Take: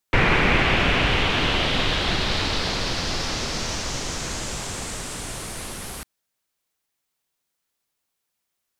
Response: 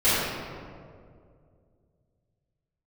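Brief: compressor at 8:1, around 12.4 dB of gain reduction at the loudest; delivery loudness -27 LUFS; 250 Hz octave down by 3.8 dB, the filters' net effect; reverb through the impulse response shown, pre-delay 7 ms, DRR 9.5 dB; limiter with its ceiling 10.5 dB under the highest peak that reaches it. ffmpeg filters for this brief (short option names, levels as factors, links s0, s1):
-filter_complex "[0:a]equalizer=f=250:t=o:g=-5.5,acompressor=threshold=0.0398:ratio=8,alimiter=limit=0.0631:level=0:latency=1,asplit=2[s0][s1];[1:a]atrim=start_sample=2205,adelay=7[s2];[s1][s2]afir=irnorm=-1:irlink=0,volume=0.0398[s3];[s0][s3]amix=inputs=2:normalize=0,volume=1.88"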